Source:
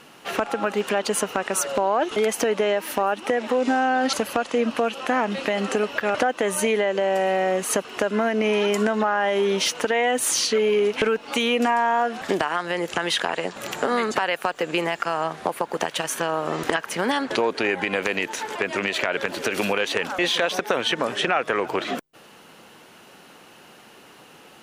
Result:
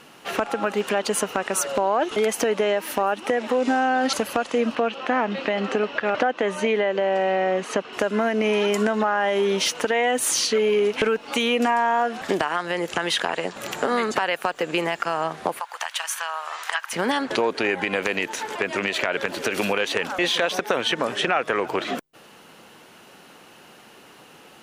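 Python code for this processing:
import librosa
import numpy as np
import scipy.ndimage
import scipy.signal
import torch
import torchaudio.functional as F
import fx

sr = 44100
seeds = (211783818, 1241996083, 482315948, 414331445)

y = fx.bandpass_edges(x, sr, low_hz=120.0, high_hz=4100.0, at=(4.75, 7.93))
y = fx.highpass(y, sr, hz=890.0, slope=24, at=(15.6, 16.93))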